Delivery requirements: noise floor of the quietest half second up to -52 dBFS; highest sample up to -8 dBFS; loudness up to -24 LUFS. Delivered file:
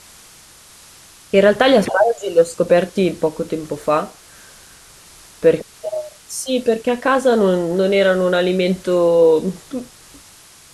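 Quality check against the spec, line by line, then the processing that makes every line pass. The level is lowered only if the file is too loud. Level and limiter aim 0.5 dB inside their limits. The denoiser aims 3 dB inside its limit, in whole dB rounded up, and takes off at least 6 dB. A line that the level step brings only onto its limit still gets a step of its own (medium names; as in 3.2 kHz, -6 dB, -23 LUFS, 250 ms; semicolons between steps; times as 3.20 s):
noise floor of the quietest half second -45 dBFS: fail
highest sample -2.5 dBFS: fail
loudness -17.0 LUFS: fail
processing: trim -7.5 dB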